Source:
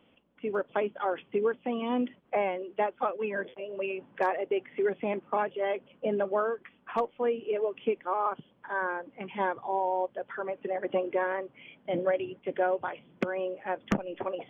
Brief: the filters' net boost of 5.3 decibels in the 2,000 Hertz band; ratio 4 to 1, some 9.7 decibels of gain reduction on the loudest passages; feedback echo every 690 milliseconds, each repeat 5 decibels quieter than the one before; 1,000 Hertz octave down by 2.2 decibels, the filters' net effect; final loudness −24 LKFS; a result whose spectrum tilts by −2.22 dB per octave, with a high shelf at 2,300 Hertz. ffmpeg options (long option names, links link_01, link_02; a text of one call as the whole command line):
ffmpeg -i in.wav -af "equalizer=frequency=1000:width_type=o:gain=-5.5,equalizer=frequency=2000:width_type=o:gain=5.5,highshelf=frequency=2300:gain=7.5,acompressor=threshold=-35dB:ratio=4,aecho=1:1:690|1380|2070|2760|3450|4140|4830:0.562|0.315|0.176|0.0988|0.0553|0.031|0.0173,volume=13.5dB" out.wav